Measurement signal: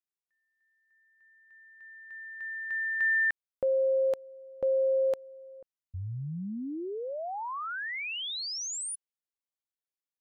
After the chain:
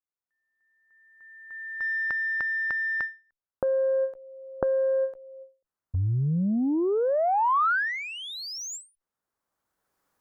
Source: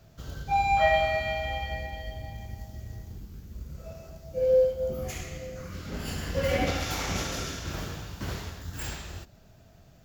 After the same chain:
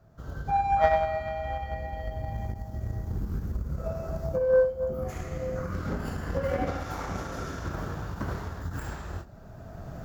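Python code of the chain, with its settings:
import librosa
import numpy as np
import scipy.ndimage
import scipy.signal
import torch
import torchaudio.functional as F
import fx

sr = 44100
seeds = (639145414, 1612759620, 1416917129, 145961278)

y = fx.recorder_agc(x, sr, target_db=-19.5, rise_db_per_s=15.0, max_gain_db=30)
y = fx.cheby_harmonics(y, sr, harmonics=(2, 3), levels_db=(-30, -14), full_scale_db=-10.0)
y = fx.high_shelf_res(y, sr, hz=1900.0, db=-10.5, q=1.5)
y = fx.end_taper(y, sr, db_per_s=200.0)
y = F.gain(torch.from_numpy(y), 4.5).numpy()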